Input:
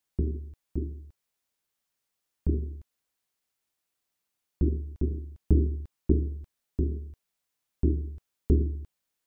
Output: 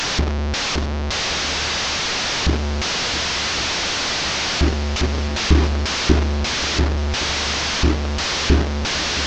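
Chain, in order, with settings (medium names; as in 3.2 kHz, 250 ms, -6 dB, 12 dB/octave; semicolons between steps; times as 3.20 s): one-bit delta coder 32 kbps, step -22.5 dBFS; shuffle delay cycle 1117 ms, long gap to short 1.5:1, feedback 60%, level -15.5 dB; trim +7.5 dB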